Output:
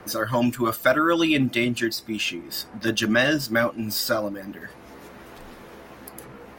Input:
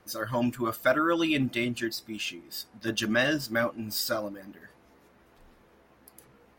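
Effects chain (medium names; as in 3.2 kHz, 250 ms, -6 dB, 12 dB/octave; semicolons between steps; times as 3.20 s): three bands compressed up and down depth 40%; trim +6 dB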